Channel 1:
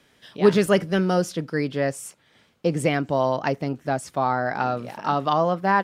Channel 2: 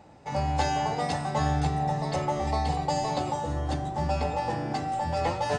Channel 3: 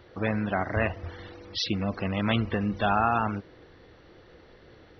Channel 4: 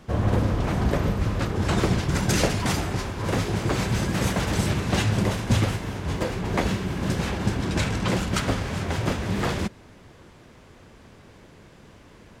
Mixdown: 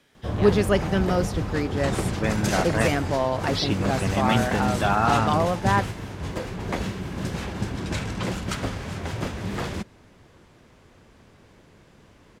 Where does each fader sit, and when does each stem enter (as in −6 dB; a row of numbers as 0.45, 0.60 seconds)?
−2.5, −14.0, +2.0, −4.0 decibels; 0.00, 0.15, 2.00, 0.15 seconds